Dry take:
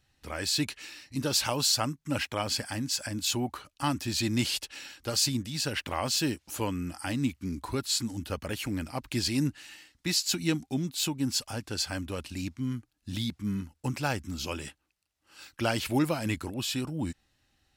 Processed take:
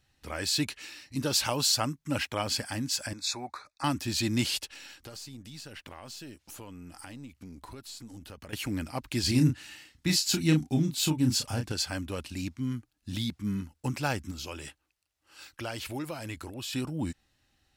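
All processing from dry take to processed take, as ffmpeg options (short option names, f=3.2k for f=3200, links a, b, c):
-filter_complex "[0:a]asettb=1/sr,asplit=3[a][b][c];[a]atrim=end=3.134[d];[b]atrim=start=3.13:end=3.84,asetpts=PTS-STARTPTS,afade=t=in:d=0.004:c=qsin,afade=t=out:st=0.706:d=0.004:c=qsin,asuperstop=centerf=3000:order=12:qfactor=3.3,acrossover=split=530 7800:gain=0.2 1 0.141[e][f][g];[e][f][g]amix=inputs=3:normalize=0[h];[c]atrim=start=3.836[i];[d][h]acrossfade=d=0.004:c1=hsin:c2=qsin[j];[j][i]acrossfade=d=0.004:c1=qsin:c2=hsin,asettb=1/sr,asplit=3[k][l][m];[k]atrim=end=4.694[n];[l]atrim=start=4.69:end=8.53,asetpts=PTS-STARTPTS,afade=t=in:d=0.004:c=qsin,afade=t=out:st=3.836:d=0.004:c=qsin,aeval=exprs='if(lt(val(0),0),0.708*val(0),val(0))':c=same,acompressor=threshold=-42dB:ratio=5:attack=3.2:release=140:knee=1:detection=peak[o];[m]atrim=start=8.526[p];[n][o]acrossfade=d=0.004:c1=hsin:c2=qsin[q];[q][p]acrossfade=d=0.004:c1=qsin:c2=hsin,asettb=1/sr,asplit=3[r][s][t];[r]atrim=end=9.234[u];[s]atrim=start=9.23:end=11.72,asetpts=PTS-STARTPTS,afade=t=in:d=0.004:c=qsin,afade=t=out:st=2.486:d=0.004:c=qsin,equalizer=f=94:t=o:w=2.4:g=7.5,asplit=2[v][w];[w]adelay=32,volume=-6dB[x];[v][x]amix=inputs=2:normalize=0,atrim=end_sample=109809[y];[t]atrim=start=11.716[z];[u][y]acrossfade=d=0.004:c1=hsin:c2=qsin[aa];[aa][z]acrossfade=d=0.004:c1=qsin:c2=hsin,asettb=1/sr,asplit=3[ab][ac][ad];[ab]atrim=end=14.314[ae];[ac]atrim=start=14.31:end=16.73,asetpts=PTS-STARTPTS,afade=t=in:d=0.004:c=qsin,afade=t=out:st=2.416:d=0.004:c=qsin,acompressor=threshold=-37dB:ratio=2:attack=3.2:release=140:knee=1:detection=peak,equalizer=f=200:t=o:w=0.6:g=-7.5[af];[ad]atrim=start=16.726[ag];[ae][af]acrossfade=d=0.004:c1=hsin:c2=qsin[ah];[ah][ag]acrossfade=d=0.004:c1=qsin:c2=hsin"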